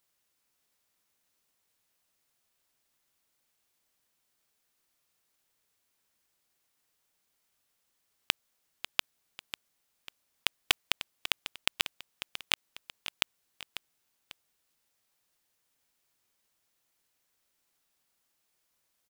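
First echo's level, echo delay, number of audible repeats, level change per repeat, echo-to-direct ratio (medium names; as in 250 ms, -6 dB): -11.5 dB, 545 ms, 2, -7.5 dB, -11.0 dB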